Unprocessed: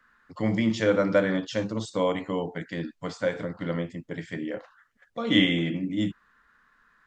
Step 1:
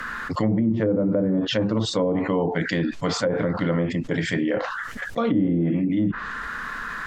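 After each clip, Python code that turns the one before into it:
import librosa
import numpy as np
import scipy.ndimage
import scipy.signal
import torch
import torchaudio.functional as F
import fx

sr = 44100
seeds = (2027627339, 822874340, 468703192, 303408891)

y = fx.env_lowpass_down(x, sr, base_hz=400.0, full_db=-20.0)
y = fx.env_flatten(y, sr, amount_pct=70)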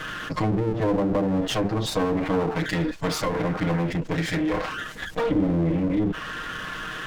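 y = fx.lower_of_two(x, sr, delay_ms=6.4)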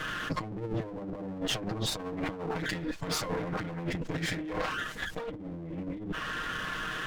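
y = fx.over_compress(x, sr, threshold_db=-27.0, ratio=-0.5)
y = F.gain(torch.from_numpy(y), -6.0).numpy()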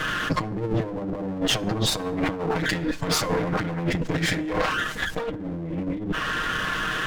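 y = fx.rev_plate(x, sr, seeds[0], rt60_s=1.5, hf_ratio=0.5, predelay_ms=0, drr_db=20.0)
y = F.gain(torch.from_numpy(y), 8.5).numpy()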